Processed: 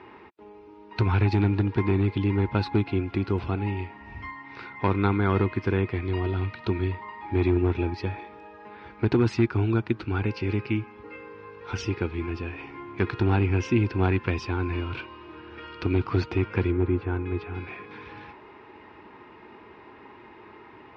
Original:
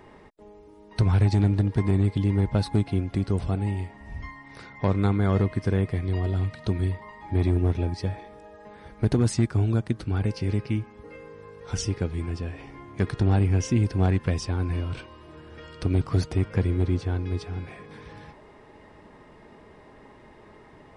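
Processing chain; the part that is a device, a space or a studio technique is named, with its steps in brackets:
guitar cabinet (loudspeaker in its box 85–4,600 Hz, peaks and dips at 160 Hz −9 dB, 350 Hz +7 dB, 590 Hz −7 dB, 940 Hz +7 dB, 1,400 Hz +7 dB, 2,500 Hz +10 dB)
0:16.71–0:17.53: low-pass filter 1,600 Hz → 2,800 Hz 12 dB per octave

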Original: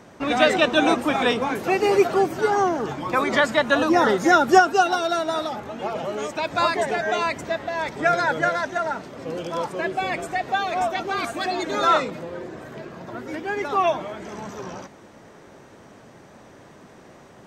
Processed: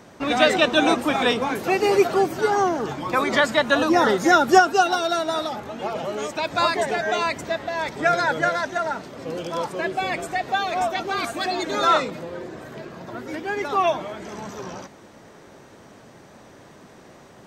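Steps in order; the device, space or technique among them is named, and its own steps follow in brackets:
presence and air boost (parametric band 4,200 Hz +2.5 dB; high-shelf EQ 10,000 Hz +5.5 dB)

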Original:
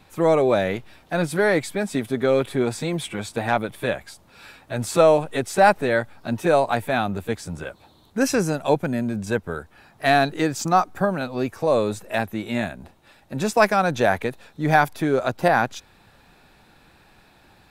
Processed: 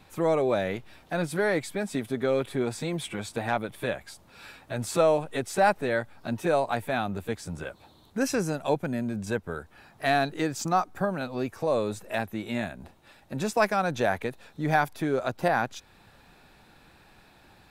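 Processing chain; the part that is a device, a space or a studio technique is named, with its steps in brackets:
parallel compression (in parallel at −1 dB: downward compressor, threshold −32 dBFS, peak gain reduction 20.5 dB)
on the sum: level −7.5 dB

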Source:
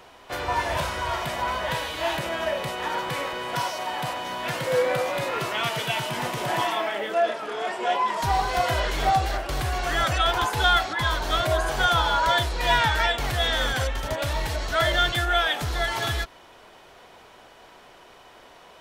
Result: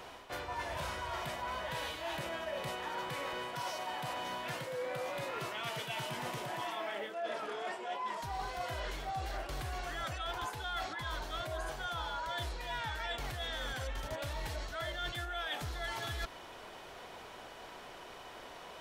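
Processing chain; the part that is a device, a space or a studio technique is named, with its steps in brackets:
compression on the reversed sound (reversed playback; downward compressor 12 to 1, threshold −36 dBFS, peak gain reduction 20.5 dB; reversed playback)

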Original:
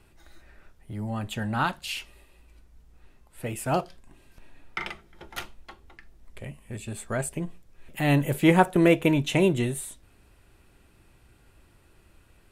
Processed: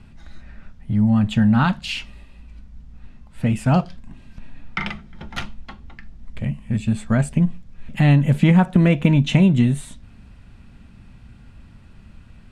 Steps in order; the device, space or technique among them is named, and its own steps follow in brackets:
jukebox (low-pass filter 5,600 Hz 12 dB per octave; low shelf with overshoot 280 Hz +7 dB, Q 3; downward compressor 4 to 1, threshold −18 dBFS, peak gain reduction 8.5 dB)
level +6.5 dB

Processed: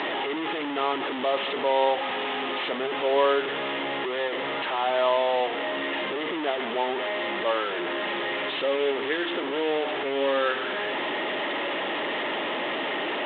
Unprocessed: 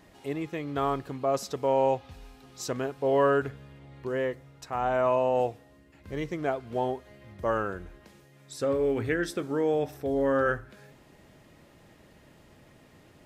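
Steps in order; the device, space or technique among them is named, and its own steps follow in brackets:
digital answering machine (band-pass filter 350–3,300 Hz; linear delta modulator 16 kbit/s, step −25 dBFS; loudspeaker in its box 410–3,800 Hz, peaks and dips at 490 Hz −6 dB, 710 Hz −6 dB, 1,100 Hz −5 dB, 1,500 Hz −9 dB, 2,400 Hz −7 dB, 3,600 Hz +7 dB)
level +8 dB

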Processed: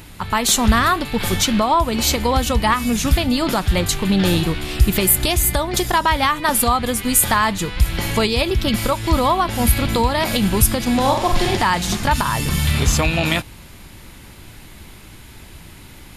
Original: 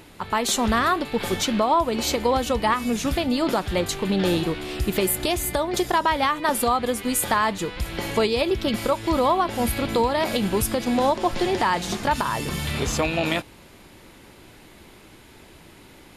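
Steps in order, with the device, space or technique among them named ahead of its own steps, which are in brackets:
smiley-face EQ (low-shelf EQ 160 Hz +8.5 dB; parametric band 430 Hz −7 dB 1.8 octaves; high-shelf EQ 9,300 Hz +6.5 dB)
0:11.01–0:11.57: flutter between parallel walls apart 7.5 metres, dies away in 0.53 s
level +6 dB

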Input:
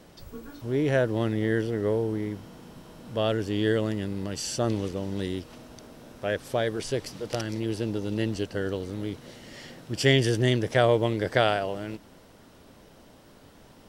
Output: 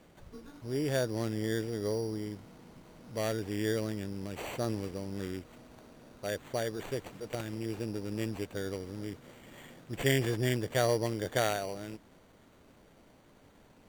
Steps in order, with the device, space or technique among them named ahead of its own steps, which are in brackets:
crushed at another speed (tape speed factor 0.5×; decimation without filtering 17×; tape speed factor 2×)
level −7 dB

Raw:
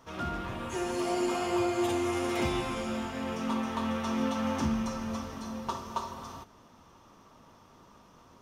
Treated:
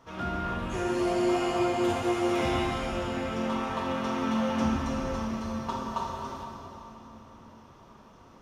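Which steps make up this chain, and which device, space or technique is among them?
swimming-pool hall (convolution reverb RT60 3.5 s, pre-delay 10 ms, DRR −0.5 dB; high-shelf EQ 5,800 Hz −8 dB)

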